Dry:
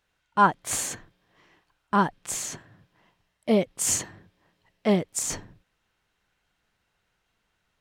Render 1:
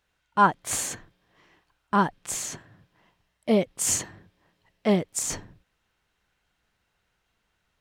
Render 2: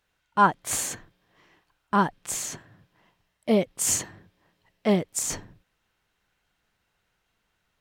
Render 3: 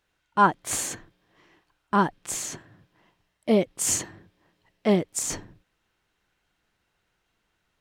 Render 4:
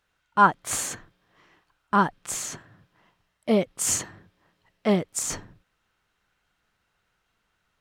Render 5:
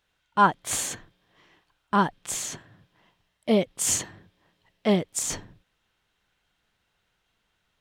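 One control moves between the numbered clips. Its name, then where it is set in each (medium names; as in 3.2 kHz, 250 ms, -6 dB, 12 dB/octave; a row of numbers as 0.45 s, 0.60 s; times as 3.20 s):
peaking EQ, frequency: 62 Hz, 15 kHz, 330 Hz, 1.3 kHz, 3.4 kHz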